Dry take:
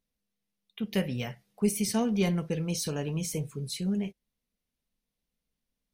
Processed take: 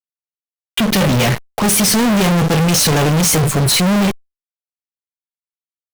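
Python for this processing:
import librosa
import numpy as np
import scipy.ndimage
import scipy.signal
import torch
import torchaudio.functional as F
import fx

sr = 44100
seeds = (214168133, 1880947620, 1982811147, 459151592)

y = fx.fuzz(x, sr, gain_db=53.0, gate_db=-53.0)
y = fx.power_curve(y, sr, exponent=0.5)
y = y * librosa.db_to_amplitude(-1.0)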